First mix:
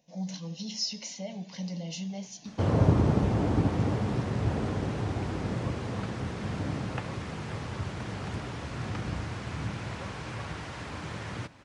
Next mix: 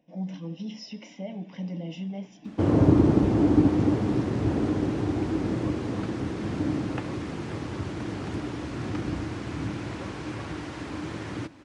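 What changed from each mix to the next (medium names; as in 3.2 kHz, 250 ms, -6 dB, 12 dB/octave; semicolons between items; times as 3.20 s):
speech: add Savitzky-Golay filter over 25 samples; master: add peaking EQ 310 Hz +13 dB 0.6 oct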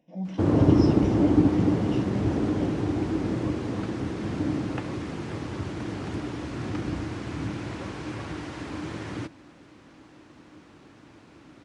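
background: entry -2.20 s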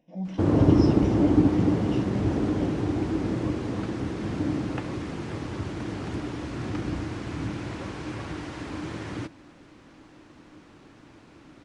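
master: remove high-pass 52 Hz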